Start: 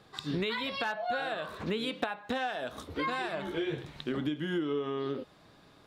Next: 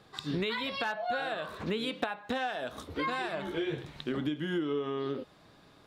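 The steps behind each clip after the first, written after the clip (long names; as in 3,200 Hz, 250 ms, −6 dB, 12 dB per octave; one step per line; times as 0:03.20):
no processing that can be heard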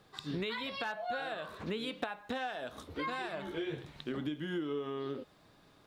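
background noise pink −72 dBFS
level −4.5 dB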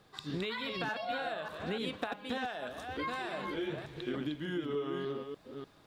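delay that plays each chunk backwards 297 ms, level −5 dB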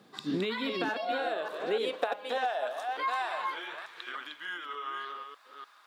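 high-pass filter sweep 210 Hz → 1,200 Hz, 0:00.05–0:04.00
level +2.5 dB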